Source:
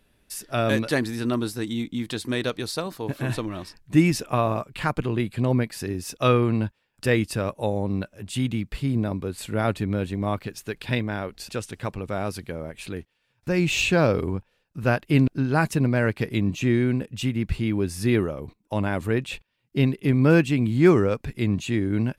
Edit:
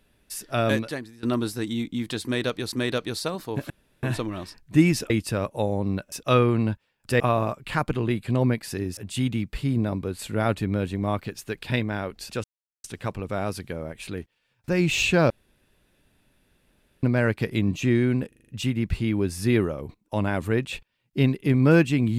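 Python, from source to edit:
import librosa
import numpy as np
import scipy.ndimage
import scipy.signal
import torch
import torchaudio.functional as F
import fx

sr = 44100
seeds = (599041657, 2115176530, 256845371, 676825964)

y = fx.edit(x, sr, fx.fade_out_to(start_s=0.71, length_s=0.52, curve='qua', floor_db=-20.5),
    fx.repeat(start_s=2.24, length_s=0.48, count=2),
    fx.insert_room_tone(at_s=3.22, length_s=0.33),
    fx.swap(start_s=4.29, length_s=1.77, other_s=7.14, other_length_s=1.02),
    fx.insert_silence(at_s=11.63, length_s=0.4),
    fx.room_tone_fill(start_s=14.09, length_s=1.73),
    fx.stutter(start_s=17.07, slice_s=0.04, count=6), tone=tone)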